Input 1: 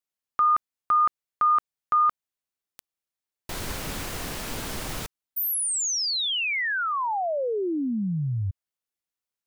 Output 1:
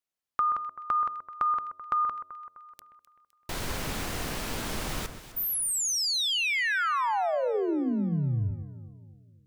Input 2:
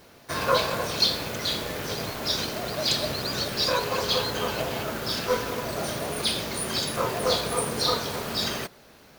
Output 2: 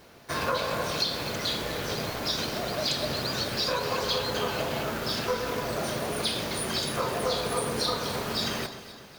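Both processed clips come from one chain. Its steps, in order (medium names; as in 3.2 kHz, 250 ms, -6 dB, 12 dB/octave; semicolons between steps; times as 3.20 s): treble shelf 6.5 kHz -3.5 dB; de-hum 91.46 Hz, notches 7; compression, threshold -24 dBFS; echo whose repeats swap between lows and highs 128 ms, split 2 kHz, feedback 69%, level -10 dB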